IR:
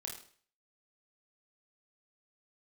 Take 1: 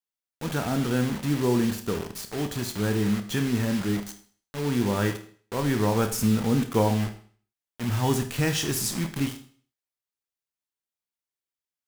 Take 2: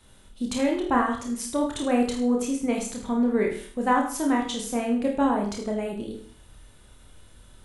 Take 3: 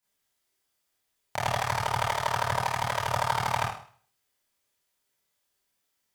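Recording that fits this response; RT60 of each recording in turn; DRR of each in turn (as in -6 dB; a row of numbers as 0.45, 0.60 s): 2; 0.45, 0.45, 0.45 s; 7.0, 0.0, -9.5 dB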